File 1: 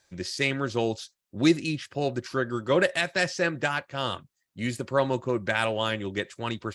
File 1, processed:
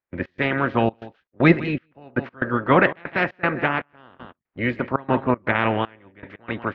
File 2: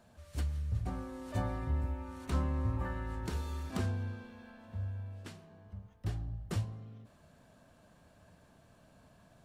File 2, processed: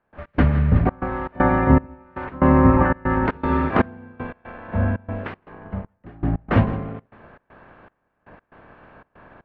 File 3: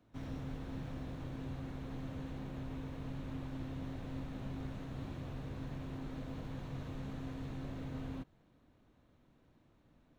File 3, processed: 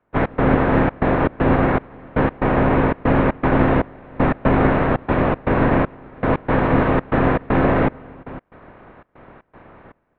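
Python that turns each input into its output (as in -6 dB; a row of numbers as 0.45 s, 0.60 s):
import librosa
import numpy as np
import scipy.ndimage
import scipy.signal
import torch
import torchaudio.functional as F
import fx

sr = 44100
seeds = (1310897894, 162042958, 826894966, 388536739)

p1 = fx.spec_clip(x, sr, under_db=16)
p2 = fx.quant_dither(p1, sr, seeds[0], bits=8, dither='none')
p3 = p1 + (p2 * librosa.db_to_amplitude(-10.0))
p4 = fx.dynamic_eq(p3, sr, hz=250.0, q=4.0, threshold_db=-48.0, ratio=4.0, max_db=5)
p5 = scipy.signal.sosfilt(scipy.signal.butter(4, 2100.0, 'lowpass', fs=sr, output='sos'), p4)
p6 = p5 + 10.0 ** (-16.5 / 20.0) * np.pad(p5, (int(162 * sr / 1000.0), 0))[:len(p5)]
p7 = fx.step_gate(p6, sr, bpm=118, pattern='.x.xxxx.xx.xxx..', floor_db=-24.0, edge_ms=4.5)
y = p7 * 10.0 ** (-2 / 20.0) / np.max(np.abs(p7))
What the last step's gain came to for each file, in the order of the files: +4.5 dB, +15.5 dB, +24.0 dB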